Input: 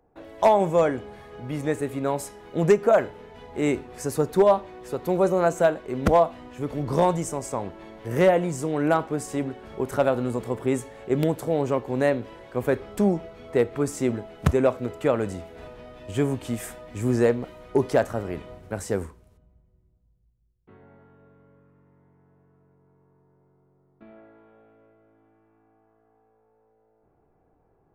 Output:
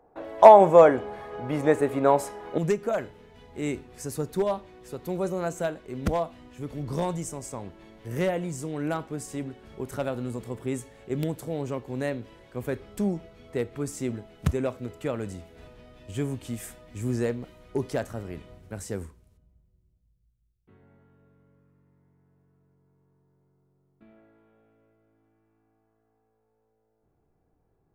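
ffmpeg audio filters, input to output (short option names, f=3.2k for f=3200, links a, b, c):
-af "asetnsamples=n=441:p=0,asendcmd='2.58 equalizer g -7.5',equalizer=f=790:t=o:w=2.8:g=10,volume=-2.5dB"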